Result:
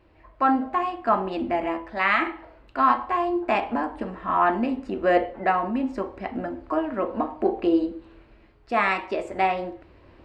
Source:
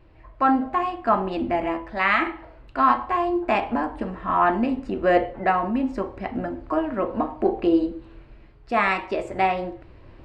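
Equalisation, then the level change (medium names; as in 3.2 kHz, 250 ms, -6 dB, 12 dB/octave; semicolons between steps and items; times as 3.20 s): high-pass 77 Hz 6 dB/octave; peaking EQ 130 Hz -7 dB 0.66 oct; -1.0 dB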